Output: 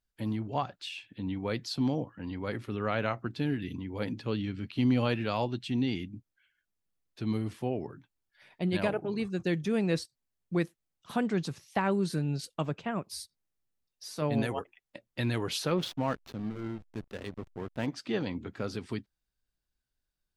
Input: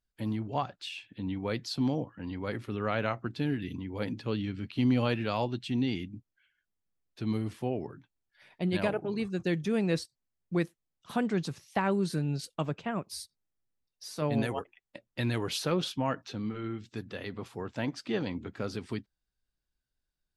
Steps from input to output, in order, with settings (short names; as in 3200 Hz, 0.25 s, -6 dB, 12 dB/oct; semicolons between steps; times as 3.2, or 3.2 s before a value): 15.77–17.87 backlash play -36 dBFS